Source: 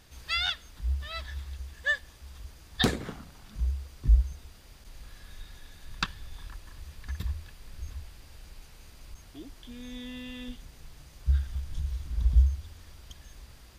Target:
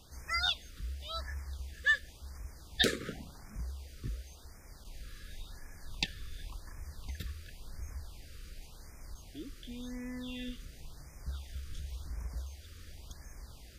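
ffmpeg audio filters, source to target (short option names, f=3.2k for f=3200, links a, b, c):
-filter_complex "[0:a]acrossover=split=310[a][b];[a]acompressor=threshold=-37dB:ratio=12[c];[c][b]amix=inputs=2:normalize=0,afftfilt=real='re*(1-between(b*sr/1024,770*pow(3600/770,0.5+0.5*sin(2*PI*0.92*pts/sr))/1.41,770*pow(3600/770,0.5+0.5*sin(2*PI*0.92*pts/sr))*1.41))':imag='im*(1-between(b*sr/1024,770*pow(3600/770,0.5+0.5*sin(2*PI*0.92*pts/sr))/1.41,770*pow(3600/770,0.5+0.5*sin(2*PI*0.92*pts/sr))*1.41))':win_size=1024:overlap=0.75"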